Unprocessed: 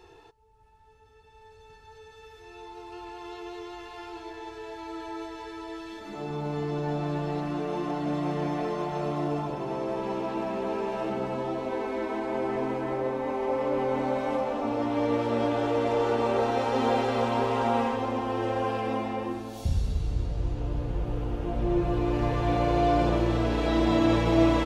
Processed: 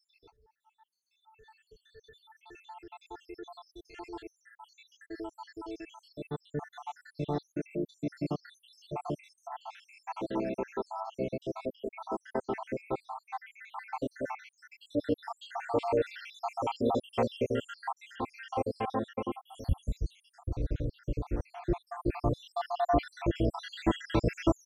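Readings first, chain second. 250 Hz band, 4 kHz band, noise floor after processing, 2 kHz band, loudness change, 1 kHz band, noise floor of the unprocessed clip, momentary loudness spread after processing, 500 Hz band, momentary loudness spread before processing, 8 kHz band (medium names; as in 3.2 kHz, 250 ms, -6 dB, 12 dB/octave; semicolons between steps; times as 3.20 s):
-7.5 dB, -7.0 dB, -78 dBFS, -7.5 dB, -7.0 dB, -7.0 dB, -53 dBFS, 17 LU, -7.0 dB, 16 LU, no reading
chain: random holes in the spectrogram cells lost 80%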